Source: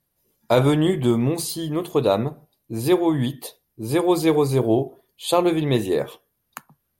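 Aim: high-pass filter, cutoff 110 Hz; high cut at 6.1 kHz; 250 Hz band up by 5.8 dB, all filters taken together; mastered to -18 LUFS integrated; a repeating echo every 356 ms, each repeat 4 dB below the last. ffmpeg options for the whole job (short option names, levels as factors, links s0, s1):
-af "highpass=110,lowpass=6100,equalizer=f=250:t=o:g=8.5,aecho=1:1:356|712|1068|1424|1780|2136|2492|2848|3204:0.631|0.398|0.25|0.158|0.0994|0.0626|0.0394|0.0249|0.0157,volume=0.841"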